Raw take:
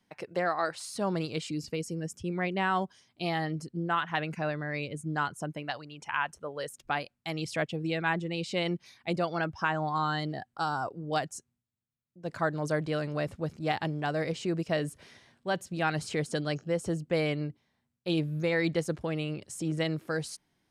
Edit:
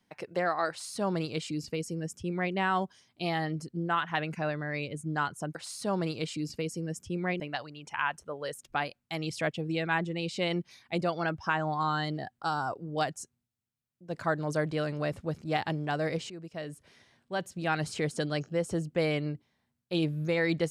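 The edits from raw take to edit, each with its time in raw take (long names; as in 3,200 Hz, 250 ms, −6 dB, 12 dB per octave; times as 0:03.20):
0:00.69–0:02.54: duplicate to 0:05.55
0:14.45–0:15.98: fade in, from −15 dB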